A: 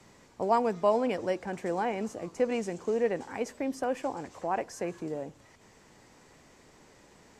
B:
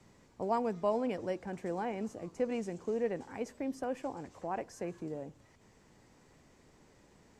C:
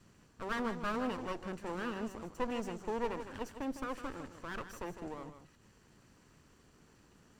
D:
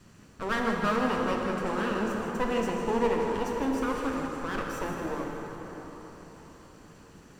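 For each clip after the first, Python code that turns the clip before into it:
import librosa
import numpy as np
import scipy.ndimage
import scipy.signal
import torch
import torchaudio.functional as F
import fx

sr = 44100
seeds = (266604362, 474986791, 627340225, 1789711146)

y1 = fx.low_shelf(x, sr, hz=330.0, db=7.0)
y1 = y1 * 10.0 ** (-8.0 / 20.0)
y2 = fx.lower_of_two(y1, sr, delay_ms=0.68)
y2 = y2 + 10.0 ** (-10.0 / 20.0) * np.pad(y2, (int(155 * sr / 1000.0), 0))[:len(y2)]
y3 = fx.rev_plate(y2, sr, seeds[0], rt60_s=4.7, hf_ratio=0.6, predelay_ms=0, drr_db=0.0)
y3 = y3 * 10.0 ** (7.0 / 20.0)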